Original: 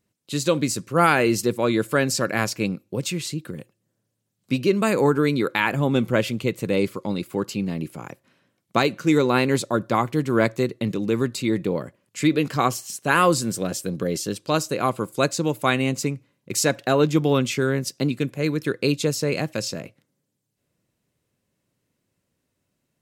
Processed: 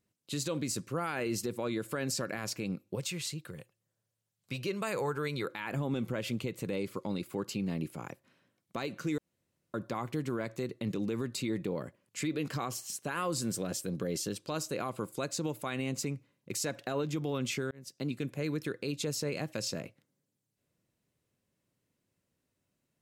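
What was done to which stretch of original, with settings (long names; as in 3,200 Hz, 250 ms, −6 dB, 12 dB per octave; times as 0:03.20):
0:02.95–0:05.45: parametric band 260 Hz −12 dB 1.1 octaves
0:09.18–0:09.74: fill with room tone
0:17.71–0:18.33: fade in
whole clip: downward compressor 2 to 1, threshold −22 dBFS; brickwall limiter −18 dBFS; level −6 dB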